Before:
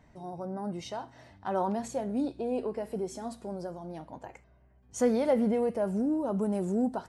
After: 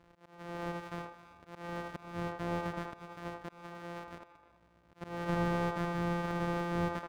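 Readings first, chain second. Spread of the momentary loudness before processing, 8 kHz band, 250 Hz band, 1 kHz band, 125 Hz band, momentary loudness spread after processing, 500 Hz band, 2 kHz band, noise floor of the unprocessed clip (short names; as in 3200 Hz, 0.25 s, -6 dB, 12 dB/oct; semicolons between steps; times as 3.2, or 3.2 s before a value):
17 LU, -12.0 dB, -8.0 dB, -2.0 dB, +2.5 dB, 16 LU, -9.5 dB, +7.0 dB, -61 dBFS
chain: sample sorter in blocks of 256 samples; on a send: narrowing echo 78 ms, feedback 43%, band-pass 820 Hz, level -3.5 dB; on the sum: auto swell 0.378 s; overdrive pedal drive 10 dB, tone 1200 Hz, clips at -18.5 dBFS; speakerphone echo 0.33 s, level -16 dB; gain -2 dB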